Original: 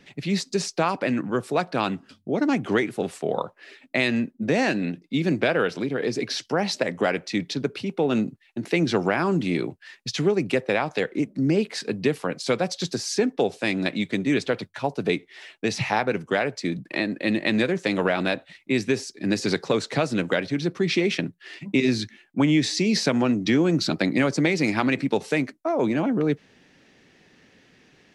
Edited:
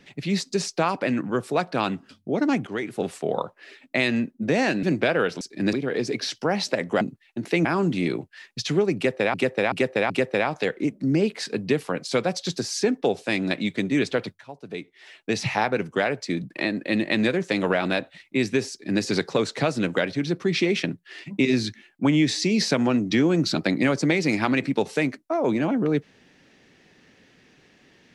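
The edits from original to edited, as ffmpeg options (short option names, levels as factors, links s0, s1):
-filter_complex "[0:a]asplit=11[s0][s1][s2][s3][s4][s5][s6][s7][s8][s9][s10];[s0]atrim=end=2.67,asetpts=PTS-STARTPTS,afade=t=out:st=2.666:d=0.004:c=hsin:silence=0.188365[s11];[s1]atrim=start=2.67:end=4.832,asetpts=PTS-STARTPTS,afade=t=in:d=0.34:silence=0.188365[s12];[s2]atrim=start=5.228:end=5.812[s13];[s3]atrim=start=19.048:end=19.372[s14];[s4]atrim=start=5.808:end=7.092[s15];[s5]atrim=start=8.208:end=8.852[s16];[s6]atrim=start=9.138:end=10.832[s17];[s7]atrim=start=10.448:end=10.832[s18];[s8]atrim=start=10.448:end=10.832[s19];[s9]atrim=start=10.448:end=14.76,asetpts=PTS-STARTPTS,afade=t=out:st=4.308:d=0.004:c=hsin:silence=0.177828[s20];[s10]atrim=start=14.76,asetpts=PTS-STARTPTS,afade=t=in:d=0.9:c=qua:silence=0.177828[s21];[s11][s12]concat=n=2:v=0:a=1[s22];[s22][s13]acrossfade=d=0.004:c1=hsin:c2=hsin[s23];[s23][s14]acrossfade=d=0.004:c1=hsin:c2=hsin[s24];[s24][s15]acrossfade=d=0.004:c1=hsin:c2=hsin[s25];[s25][s16]acrossfade=d=0.004:c1=hsin:c2=hsin[s26];[s26][s17]acrossfade=d=0.004:c1=hsin:c2=hsin[s27];[s27][s18]acrossfade=d=0.004:c1=hsin:c2=hsin[s28];[s28][s19]acrossfade=d=0.004:c1=hsin:c2=hsin[s29];[s20][s21]concat=n=2:v=0:a=1[s30];[s29][s30]acrossfade=d=0.004:c1=hsin:c2=hsin"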